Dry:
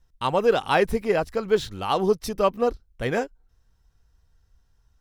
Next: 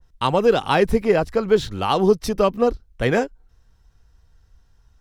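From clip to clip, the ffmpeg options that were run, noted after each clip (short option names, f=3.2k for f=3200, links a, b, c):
-filter_complex "[0:a]highshelf=f=9.4k:g=-6.5,acrossover=split=360|3000[a][b][c];[b]acompressor=threshold=-25dB:ratio=3[d];[a][d][c]amix=inputs=3:normalize=0,adynamicequalizer=threshold=0.00891:dfrequency=2000:dqfactor=0.7:tfrequency=2000:tqfactor=0.7:attack=5:release=100:ratio=0.375:range=1.5:mode=cutabove:tftype=highshelf,volume=7dB"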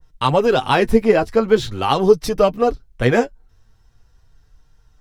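-af "flanger=delay=6.5:depth=2.6:regen=32:speed=0.42:shape=sinusoidal,volume=6.5dB"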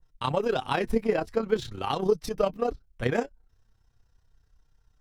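-af "tremolo=f=32:d=0.621,volume=-8.5dB"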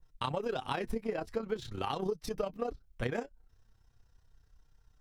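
-af "acompressor=threshold=-31dB:ratio=6"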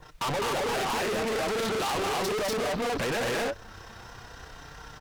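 -filter_complex "[0:a]aecho=1:1:204.1|244.9:0.631|1,asplit=2[a][b];[b]highpass=f=720:p=1,volume=34dB,asoftclip=type=tanh:threshold=-15dB[c];[a][c]amix=inputs=2:normalize=0,lowpass=f=2.1k:p=1,volume=-6dB,volume=33.5dB,asoftclip=hard,volume=-33.5dB,volume=5.5dB"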